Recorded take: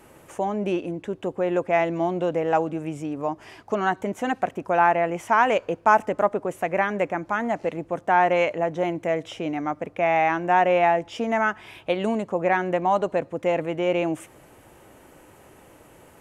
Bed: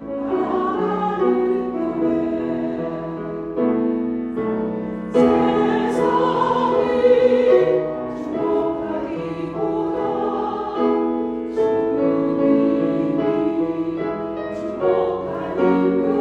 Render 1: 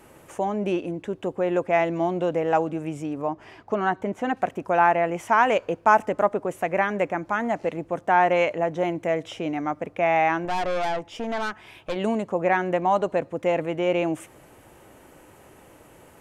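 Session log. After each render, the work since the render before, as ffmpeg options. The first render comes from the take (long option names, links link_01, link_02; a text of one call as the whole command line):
ffmpeg -i in.wav -filter_complex "[0:a]asettb=1/sr,asplit=3[link_01][link_02][link_03];[link_01]atrim=end=3.224[link_04];[link_02]atrim=start=3.22:end=4.37,asetpts=PTS-STARTPTS,afade=type=in:duration=0.004:curve=qsin,afade=type=out:start_time=1.146:duration=0.004:curve=qsin,lowpass=frequency=2700:poles=1[link_05];[link_03]atrim=start=4.366[link_06];[link_04][link_05]acrossfade=duration=0.004:curve1=hsin:curve2=qsin[link_07];[link_07][link_06]acrossfade=duration=0.004:curve1=qsin:curve2=hsin,asettb=1/sr,asplit=3[link_08][link_09][link_10];[link_08]atrim=end=10.454[link_11];[link_09]atrim=start=10.45:end=11.96,asetpts=PTS-STARTPTS,afade=type=in:duration=0.004:curve=qsin,afade=type=out:start_time=1.506:duration=0.004:curve=qsin,aeval=exprs='(tanh(14.1*val(0)+0.6)-tanh(0.6))/14.1':channel_layout=same[link_12];[link_10]atrim=start=11.956[link_13];[link_11][link_12]acrossfade=duration=0.004:curve1=hsin:curve2=qsin[link_14];[link_14][link_13]acrossfade=duration=0.004:curve1=qsin:curve2=hsin" out.wav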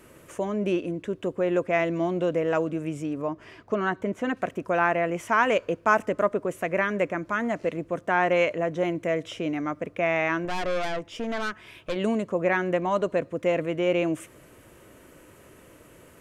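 ffmpeg -i in.wav -af "equalizer=frequency=810:width_type=o:width=0.27:gain=-14.5" out.wav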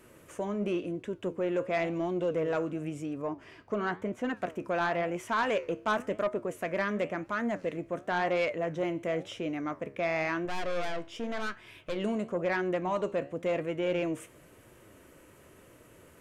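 ffmpeg -i in.wav -af "flanger=delay=8:depth=7:regen=76:speed=0.95:shape=sinusoidal,asoftclip=type=tanh:threshold=-21dB" out.wav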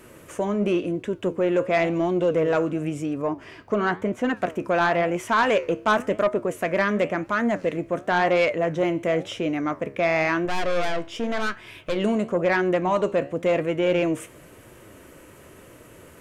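ffmpeg -i in.wav -af "volume=8.5dB" out.wav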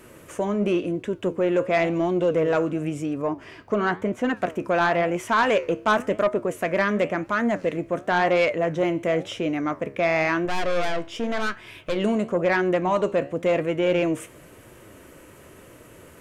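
ffmpeg -i in.wav -af anull out.wav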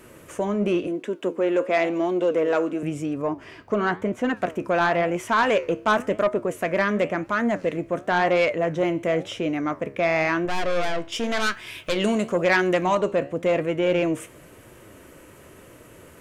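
ffmpeg -i in.wav -filter_complex "[0:a]asettb=1/sr,asplit=3[link_01][link_02][link_03];[link_01]atrim=end=0.874[link_04];[link_02]atrim=start=0.87:end=2.83,asetpts=PTS-STARTPTS,afade=type=in:duration=0.004:curve=qsin,afade=type=out:start_time=1.956:duration=0.004:curve=qsin,highpass=frequency=220:width=0.5412,highpass=frequency=220:width=1.3066[link_05];[link_03]atrim=start=2.826[link_06];[link_04][link_05]acrossfade=duration=0.004:curve1=hsin:curve2=qsin[link_07];[link_07][link_06]acrossfade=duration=0.004:curve1=qsin:curve2=hsin,asettb=1/sr,asplit=3[link_08][link_09][link_10];[link_08]atrim=end=11.124[link_11];[link_09]atrim=start=11.12:end=12.95,asetpts=PTS-STARTPTS,afade=type=in:duration=0.004:curve=qsin,afade=type=out:start_time=1.826:duration=0.004:curve=qsin,highshelf=frequency=2200:gain=10[link_12];[link_10]atrim=start=12.946[link_13];[link_11][link_12]acrossfade=duration=0.004:curve1=hsin:curve2=qsin[link_14];[link_14][link_13]acrossfade=duration=0.004:curve1=qsin:curve2=hsin" out.wav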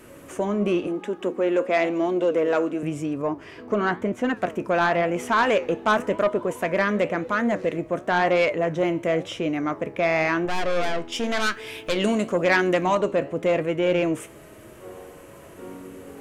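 ffmpeg -i in.wav -i bed.wav -filter_complex "[1:a]volume=-23.5dB[link_01];[0:a][link_01]amix=inputs=2:normalize=0" out.wav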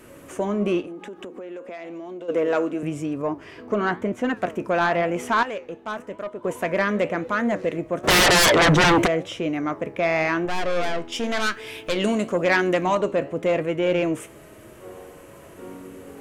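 ffmpeg -i in.wav -filter_complex "[0:a]asplit=3[link_01][link_02][link_03];[link_01]afade=type=out:start_time=0.81:duration=0.02[link_04];[link_02]acompressor=threshold=-33dB:ratio=8:attack=3.2:release=140:knee=1:detection=peak,afade=type=in:start_time=0.81:duration=0.02,afade=type=out:start_time=2.28:duration=0.02[link_05];[link_03]afade=type=in:start_time=2.28:duration=0.02[link_06];[link_04][link_05][link_06]amix=inputs=3:normalize=0,asplit=3[link_07][link_08][link_09];[link_07]afade=type=out:start_time=8.03:duration=0.02[link_10];[link_08]aeval=exprs='0.237*sin(PI/2*5.01*val(0)/0.237)':channel_layout=same,afade=type=in:start_time=8.03:duration=0.02,afade=type=out:start_time=9.06:duration=0.02[link_11];[link_09]afade=type=in:start_time=9.06:duration=0.02[link_12];[link_10][link_11][link_12]amix=inputs=3:normalize=0,asplit=3[link_13][link_14][link_15];[link_13]atrim=end=5.432[link_16];[link_14]atrim=start=5.428:end=6.442,asetpts=PTS-STARTPTS,volume=-10.5dB[link_17];[link_15]atrim=start=6.438[link_18];[link_16][link_17]acrossfade=duration=0.004:curve1=hsin:curve2=hsin[link_19];[link_19][link_18]acrossfade=duration=0.004:curve1=hsin:curve2=hsin" out.wav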